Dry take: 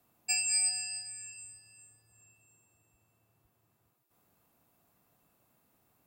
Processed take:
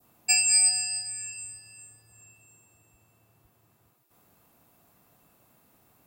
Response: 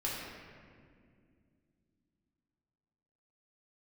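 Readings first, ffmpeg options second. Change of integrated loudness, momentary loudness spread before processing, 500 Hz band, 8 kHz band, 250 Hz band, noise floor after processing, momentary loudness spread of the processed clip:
+8.0 dB, 20 LU, +8.5 dB, +8.5 dB, +8.5 dB, -66 dBFS, 19 LU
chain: -af "adynamicequalizer=threshold=0.00282:dfrequency=2200:dqfactor=0.89:tfrequency=2200:tqfactor=0.89:attack=5:release=100:ratio=0.375:range=2.5:mode=cutabove:tftype=bell,volume=8.5dB"

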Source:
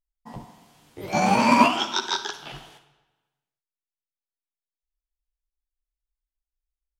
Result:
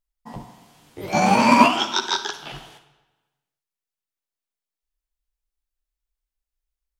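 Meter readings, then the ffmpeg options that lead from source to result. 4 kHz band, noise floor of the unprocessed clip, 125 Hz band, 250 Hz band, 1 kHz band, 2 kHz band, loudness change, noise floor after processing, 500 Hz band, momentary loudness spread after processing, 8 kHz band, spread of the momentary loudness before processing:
+3.0 dB, under -85 dBFS, +3.0 dB, +3.0 dB, +3.0 dB, +3.0 dB, +3.0 dB, under -85 dBFS, +3.0 dB, 21 LU, +3.0 dB, 21 LU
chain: -af "bandreject=f=62.28:t=h:w=4,bandreject=f=124.56:t=h:w=4,volume=3dB"

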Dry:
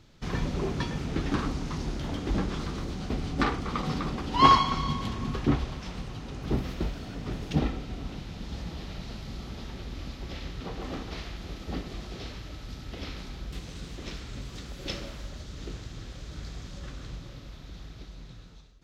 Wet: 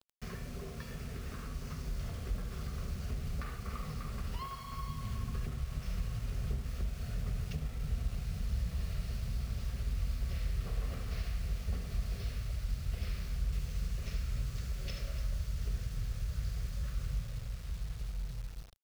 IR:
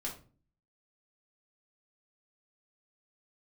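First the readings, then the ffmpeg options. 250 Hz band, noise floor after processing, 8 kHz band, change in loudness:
-14.0 dB, -44 dBFS, -4.0 dB, -7.5 dB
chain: -filter_complex "[0:a]highpass=f=43:p=1,asplit=2[a][b];[b]aecho=0:1:45|66|72|80|287:0.282|0.126|0.355|0.251|0.188[c];[a][c]amix=inputs=2:normalize=0,acompressor=threshold=-33dB:ratio=16,superequalizer=6b=0.282:9b=0.355:13b=0.562,aeval=exprs='val(0)+0.000562*sin(2*PI*490*n/s)':c=same,acrusher=bits=7:mix=0:aa=0.000001,asubboost=boost=6.5:cutoff=98,volume=-6dB"

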